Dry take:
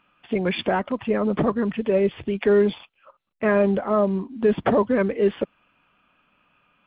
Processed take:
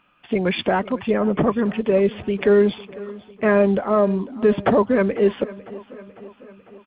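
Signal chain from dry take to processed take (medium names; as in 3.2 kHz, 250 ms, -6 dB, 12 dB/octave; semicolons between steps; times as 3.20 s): 1.14–1.66 s: steep low-pass 3.5 kHz 96 dB/octave; feedback delay 500 ms, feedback 58%, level -19 dB; trim +2.5 dB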